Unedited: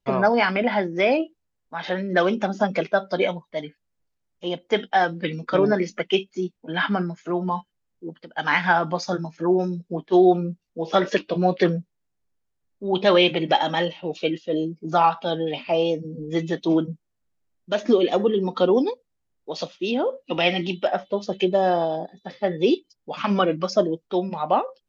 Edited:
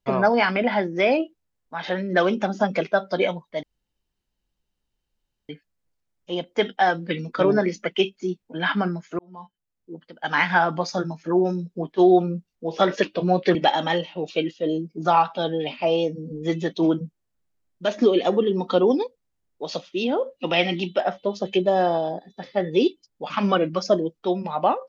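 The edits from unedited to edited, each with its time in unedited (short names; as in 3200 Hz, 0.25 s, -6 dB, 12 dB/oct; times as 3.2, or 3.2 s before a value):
3.63 insert room tone 1.86 s
7.33–8.45 fade in
11.69–13.42 cut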